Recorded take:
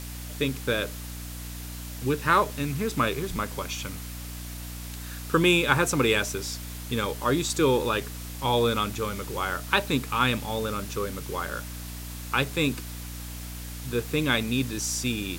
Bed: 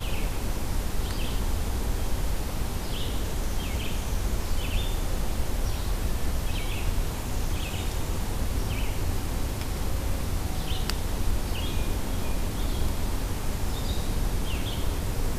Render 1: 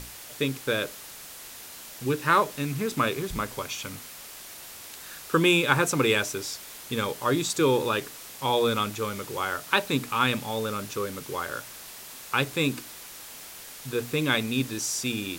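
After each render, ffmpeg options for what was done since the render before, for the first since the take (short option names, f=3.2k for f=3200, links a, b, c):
-af "bandreject=f=60:t=h:w=6,bandreject=f=120:t=h:w=6,bandreject=f=180:t=h:w=6,bandreject=f=240:t=h:w=6,bandreject=f=300:t=h:w=6"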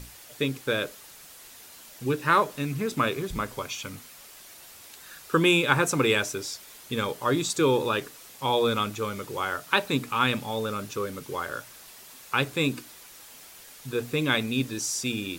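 -af "afftdn=nr=6:nf=-44"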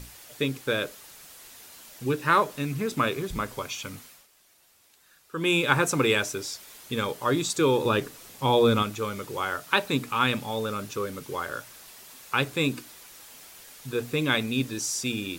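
-filter_complex "[0:a]asettb=1/sr,asplit=3[a][b][c];[a]atrim=end=7.854[d];[b]atrim=start=7.85:end=8.83,asetpts=PTS-STARTPTS,afade=t=in:d=0.004:c=qsin,afade=t=out:st=0.976:d=0.004:c=qsin,lowshelf=f=440:g=8[e];[c]atrim=start=8.826[f];[d][e]acrossfade=d=0.004:c1=hsin:c2=qsin[g];[g][f]acrossfade=d=0.004:c1=qsin:c2=hsin,asplit=3[h][i][j];[h]atrim=end=4.27,asetpts=PTS-STARTPTS,afade=t=out:st=3.9:d=0.37:c=qsin:silence=0.211349[k];[i]atrim=start=4.27:end=5.34,asetpts=PTS-STARTPTS,volume=-13.5dB[l];[j]atrim=start=5.34,asetpts=PTS-STARTPTS,afade=t=in:d=0.37:c=qsin:silence=0.211349[m];[k][l][m]concat=n=3:v=0:a=1"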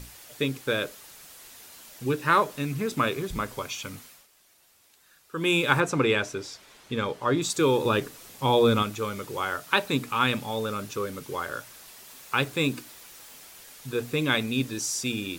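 -filter_complex "[0:a]asettb=1/sr,asplit=3[a][b][c];[a]atrim=end=5.804[d];[b]atrim=start=5.8:end=7.42,asetpts=PTS-STARTPTS,afade=t=in:d=0.004:c=qsin,afade=t=out:st=1.616:d=0.004:c=qsin,aemphasis=mode=reproduction:type=50fm[e];[c]atrim=start=7.416[f];[d][e]acrossfade=d=0.004:c1=hsin:c2=qsin[g];[g][f]acrossfade=d=0.004:c1=qsin:c2=hsin,asettb=1/sr,asplit=3[h][i][j];[h]atrim=end=12.074[k];[i]atrim=start=12.07:end=13.39,asetpts=PTS-STARTPTS,afade=t=in:d=0.004:c=qsin,afade=t=out:st=1.316:d=0.004:c=qsin,acrusher=bits=7:mix=0:aa=0.5[l];[j]atrim=start=13.386[m];[k][l]acrossfade=d=0.004:c1=hsin:c2=qsin[n];[n][m]acrossfade=d=0.004:c1=qsin:c2=hsin"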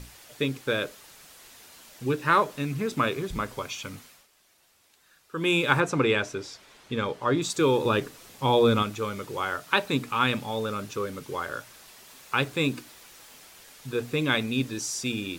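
-af "highshelf=f=8.5k:g=-6.5"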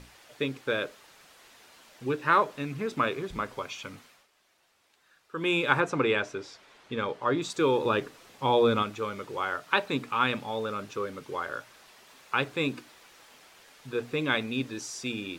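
-af "lowpass=f=2.9k:p=1,lowshelf=f=220:g=-9"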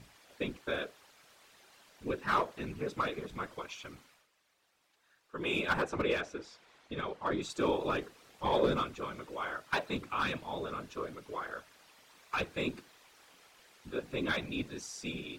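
-af "aeval=exprs='clip(val(0),-1,0.133)':c=same,afftfilt=real='hypot(re,im)*cos(2*PI*random(0))':imag='hypot(re,im)*sin(2*PI*random(1))':win_size=512:overlap=0.75"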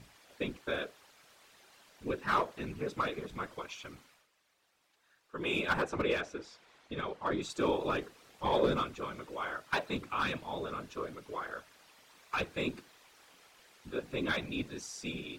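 -af anull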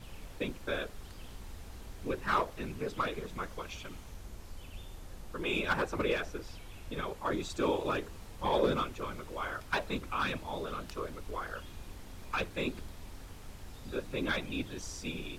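-filter_complex "[1:a]volume=-19dB[a];[0:a][a]amix=inputs=2:normalize=0"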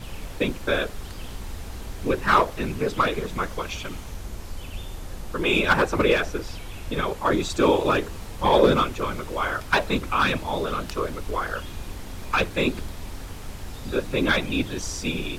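-af "volume=11.5dB"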